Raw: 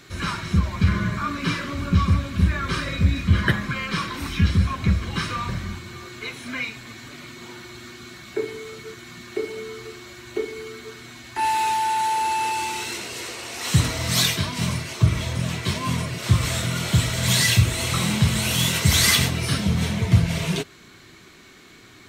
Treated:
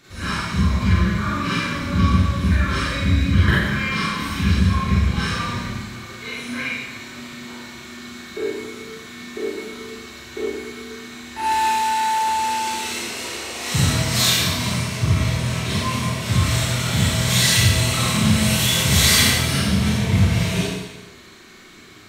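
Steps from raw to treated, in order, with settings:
four-comb reverb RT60 1.1 s, combs from 29 ms, DRR −8.5 dB
level −5.5 dB

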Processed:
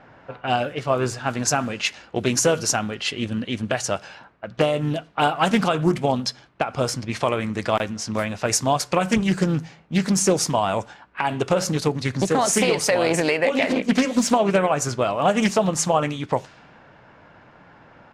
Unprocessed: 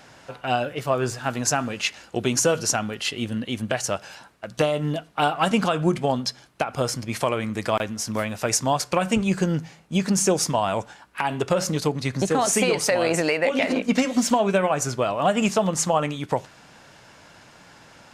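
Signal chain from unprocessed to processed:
low-pass that shuts in the quiet parts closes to 1,600 Hz, open at −20.5 dBFS
pitch-shifted copies added −3 semitones −17 dB
highs frequency-modulated by the lows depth 0.29 ms
level +1.5 dB

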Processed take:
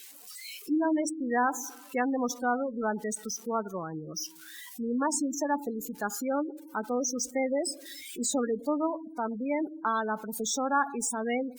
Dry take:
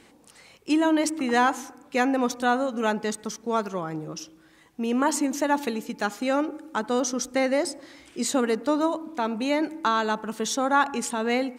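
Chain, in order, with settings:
spike at every zero crossing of −20 dBFS
gate on every frequency bin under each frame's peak −15 dB strong
noise reduction from a noise print of the clip's start 13 dB
level −5 dB
Opus 64 kbit/s 48,000 Hz

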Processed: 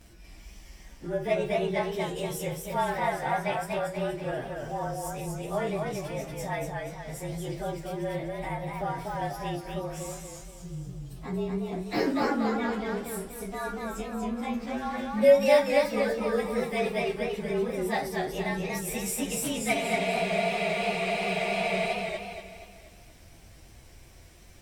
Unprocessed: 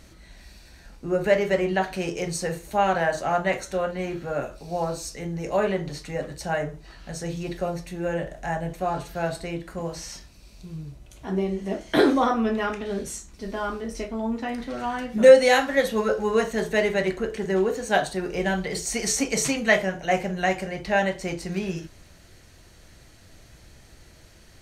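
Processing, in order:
partials spread apart or drawn together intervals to 109%
in parallel at +2 dB: downward compressor, threshold −36 dBFS, peak gain reduction 26 dB
on the sum: frozen spectrum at 0:19.75, 2.19 s
feedback echo with a swinging delay time 239 ms, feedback 45%, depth 105 cents, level −3.5 dB
level −7 dB

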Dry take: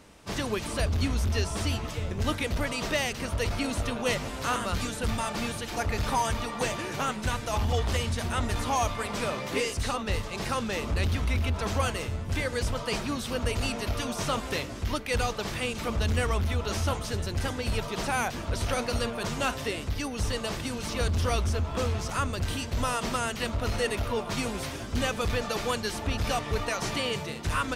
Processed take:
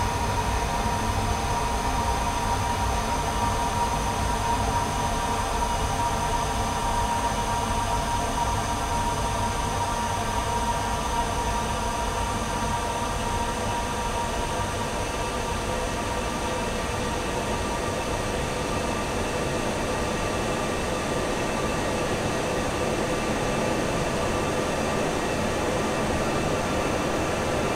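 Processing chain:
wind on the microphone 630 Hz −37 dBFS
extreme stretch with random phases 37×, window 1.00 s, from 0:06.04
level +2 dB

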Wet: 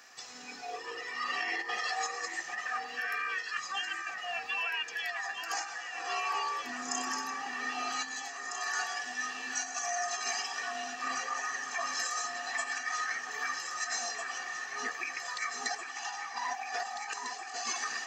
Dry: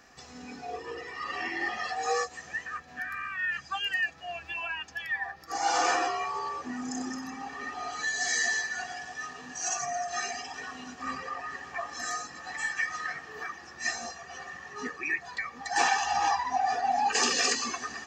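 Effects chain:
high-pass filter 1,200 Hz 6 dB per octave
high-shelf EQ 3,700 Hz +2.5 dB
compressor whose output falls as the input rises −36 dBFS, ratio −0.5
on a send: delay that swaps between a low-pass and a high-pass 800 ms, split 2,000 Hz, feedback 79%, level −5 dB

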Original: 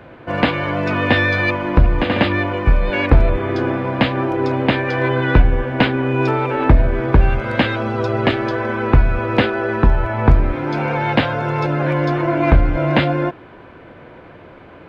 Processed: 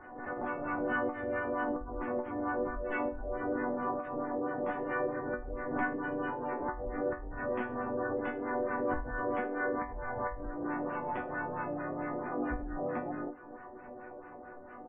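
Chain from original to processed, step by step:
downward compressor 4 to 1, threshold −25 dBFS, peak gain reduction 16 dB
auto-filter low-pass sine 4.5 Hz 530–1,500 Hz
echo ahead of the sound 74 ms −18 dB
pitch-shifted copies added −7 semitones −17 dB, −5 semitones −6 dB, +3 semitones −1 dB
gate on every frequency bin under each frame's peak −30 dB strong
high-shelf EQ 2,000 Hz −3 dB
volume swells 134 ms
resonators tuned to a chord B3 minor, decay 0.27 s
background raised ahead of every attack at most 57 dB per second
level +3.5 dB

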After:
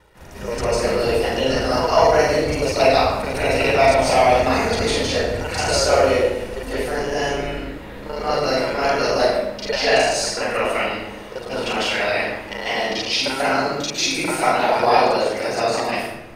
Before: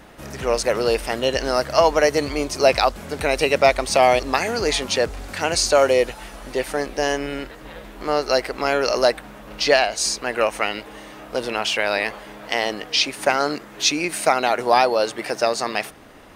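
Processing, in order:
reversed piece by piece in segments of 34 ms
parametric band 67 Hz +4 dB 0.82 octaves
convolution reverb RT60 1.0 s, pre-delay 141 ms, DRR −9.5 dB
level −10.5 dB

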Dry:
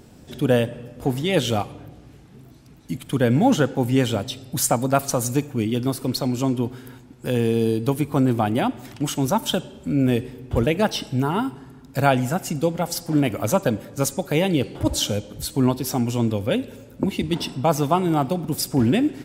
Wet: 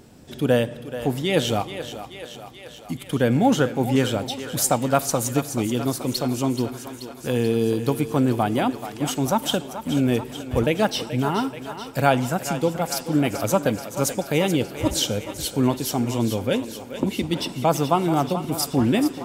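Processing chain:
low-shelf EQ 150 Hz −4 dB
feedback echo with a high-pass in the loop 431 ms, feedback 69%, high-pass 330 Hz, level −10.5 dB

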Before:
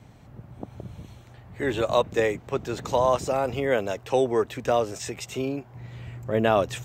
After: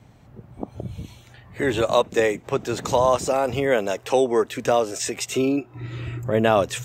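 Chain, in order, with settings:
0:05.36–0:06.20: hollow resonant body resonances 320/1,300/2,600/3,700 Hz, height 11 dB
dynamic equaliser 8,500 Hz, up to +4 dB, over −51 dBFS, Q 0.81
in parallel at +1.5 dB: downward compressor, threshold −35 dBFS, peak gain reduction 18 dB
on the sum: noise reduction from a noise print of the clip's start 9 dB
level +1.5 dB

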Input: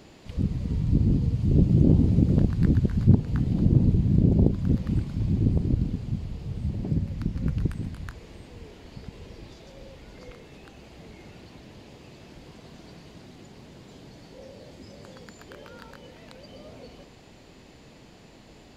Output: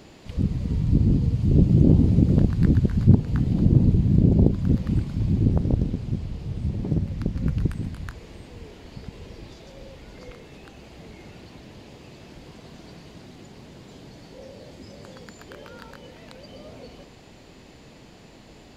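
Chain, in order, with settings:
0:05.49–0:07.37: highs frequency-modulated by the lows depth 0.8 ms
level +2.5 dB

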